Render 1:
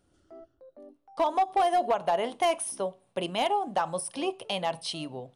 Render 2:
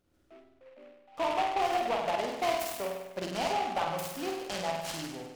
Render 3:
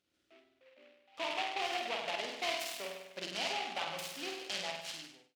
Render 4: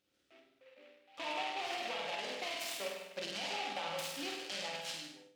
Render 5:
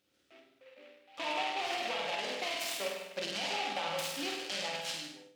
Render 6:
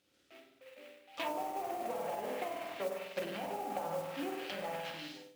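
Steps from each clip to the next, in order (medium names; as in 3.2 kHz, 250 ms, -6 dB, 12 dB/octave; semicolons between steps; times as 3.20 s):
on a send: flutter echo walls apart 8.5 m, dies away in 0.98 s; on the sum: delay time shaken by noise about 1.6 kHz, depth 0.062 ms; trim -6 dB
fade out at the end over 0.72 s; frequency weighting D; trim -9 dB
peak limiter -29.5 dBFS, peak gain reduction 9 dB; on a send at -4 dB: reverberation RT60 0.50 s, pre-delay 3 ms
high-pass 45 Hz; trim +4 dB
low-pass that closes with the level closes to 680 Hz, closed at -31 dBFS; modulation noise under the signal 18 dB; trim +1.5 dB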